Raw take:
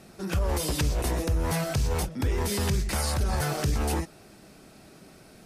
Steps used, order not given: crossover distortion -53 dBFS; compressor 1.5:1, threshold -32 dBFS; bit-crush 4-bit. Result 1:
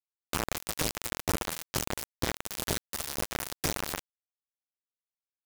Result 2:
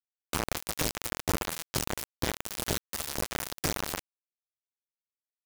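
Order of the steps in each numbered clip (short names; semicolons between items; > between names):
crossover distortion > compressor > bit-crush; compressor > bit-crush > crossover distortion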